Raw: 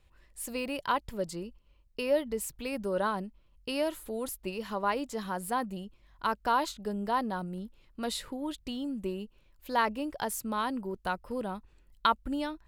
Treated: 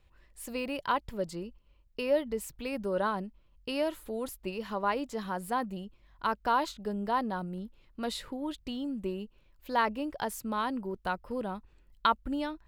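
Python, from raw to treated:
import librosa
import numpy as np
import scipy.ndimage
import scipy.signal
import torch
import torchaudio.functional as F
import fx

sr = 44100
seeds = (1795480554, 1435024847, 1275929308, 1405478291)

y = fx.peak_eq(x, sr, hz=10000.0, db=-6.0, octaves=1.5)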